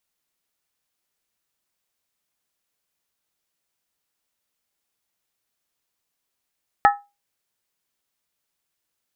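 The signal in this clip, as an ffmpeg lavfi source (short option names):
-f lavfi -i "aevalsrc='0.398*pow(10,-3*t/0.25)*sin(2*PI*813*t)+0.237*pow(10,-3*t/0.198)*sin(2*PI*1295.9*t)+0.141*pow(10,-3*t/0.171)*sin(2*PI*1736.6*t)+0.0841*pow(10,-3*t/0.165)*sin(2*PI*1866.6*t)':d=0.63:s=44100"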